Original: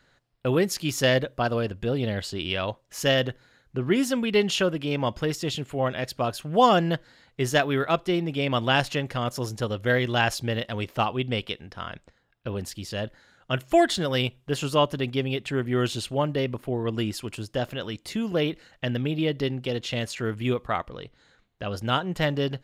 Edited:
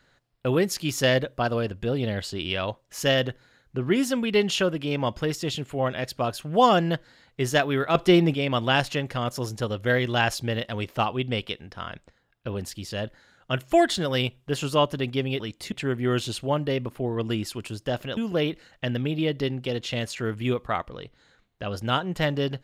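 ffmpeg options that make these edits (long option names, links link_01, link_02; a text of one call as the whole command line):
ffmpeg -i in.wav -filter_complex "[0:a]asplit=6[link_01][link_02][link_03][link_04][link_05][link_06];[link_01]atrim=end=7.952[link_07];[link_02]atrim=start=7.948:end=8.342,asetpts=PTS-STARTPTS,volume=7.5dB[link_08];[link_03]atrim=start=8.338:end=15.402[link_09];[link_04]atrim=start=17.848:end=18.172[link_10];[link_05]atrim=start=15.398:end=17.852[link_11];[link_06]atrim=start=18.168[link_12];[link_07][link_08]acrossfade=duration=0.004:curve1=hsin:curve2=hsin[link_13];[link_13][link_09]acrossfade=duration=0.004:curve1=hsin:curve2=hsin[link_14];[link_14][link_10]acrossfade=duration=0.004:curve1=hsin:curve2=hsin[link_15];[link_15][link_11]acrossfade=duration=0.004:curve1=hsin:curve2=hsin[link_16];[link_16][link_12]acrossfade=duration=0.004:curve1=hsin:curve2=hsin" out.wav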